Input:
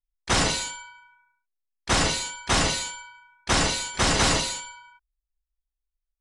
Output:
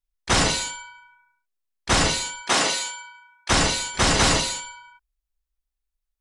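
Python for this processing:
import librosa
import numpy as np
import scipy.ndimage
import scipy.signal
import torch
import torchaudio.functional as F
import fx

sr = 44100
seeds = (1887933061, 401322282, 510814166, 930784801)

y = fx.highpass(x, sr, hz=fx.line((2.41, 250.0), (3.49, 730.0)), slope=12, at=(2.41, 3.49), fade=0.02)
y = y * librosa.db_to_amplitude(2.5)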